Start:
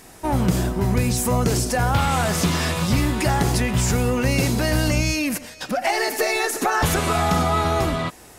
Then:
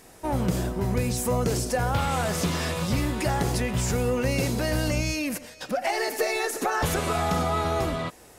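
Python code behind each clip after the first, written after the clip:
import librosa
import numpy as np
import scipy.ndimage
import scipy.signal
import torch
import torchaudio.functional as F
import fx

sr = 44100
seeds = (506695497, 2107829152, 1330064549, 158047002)

y = fx.peak_eq(x, sr, hz=510.0, db=5.0, octaves=0.54)
y = F.gain(torch.from_numpy(y), -6.0).numpy()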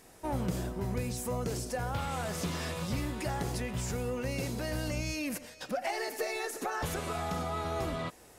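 y = fx.rider(x, sr, range_db=4, speed_s=0.5)
y = F.gain(torch.from_numpy(y), -8.5).numpy()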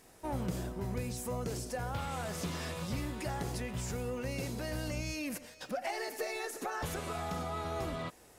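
y = fx.dmg_crackle(x, sr, seeds[0], per_s=81.0, level_db=-48.0)
y = F.gain(torch.from_numpy(y), -3.0).numpy()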